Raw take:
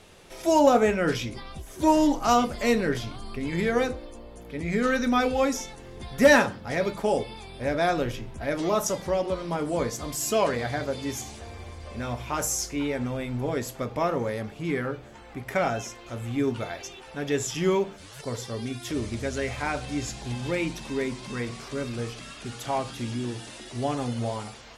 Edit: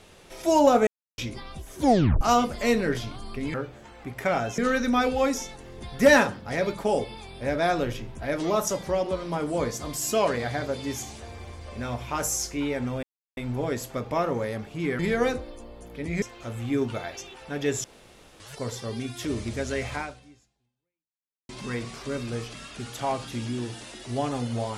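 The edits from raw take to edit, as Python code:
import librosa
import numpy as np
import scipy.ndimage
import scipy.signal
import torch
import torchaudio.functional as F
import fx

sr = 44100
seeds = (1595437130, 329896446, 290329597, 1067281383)

y = fx.edit(x, sr, fx.silence(start_s=0.87, length_s=0.31),
    fx.tape_stop(start_s=1.82, length_s=0.39),
    fx.swap(start_s=3.54, length_s=1.23, other_s=14.84, other_length_s=1.04),
    fx.insert_silence(at_s=13.22, length_s=0.34),
    fx.room_tone_fill(start_s=17.5, length_s=0.56),
    fx.fade_out_span(start_s=19.61, length_s=1.54, curve='exp'), tone=tone)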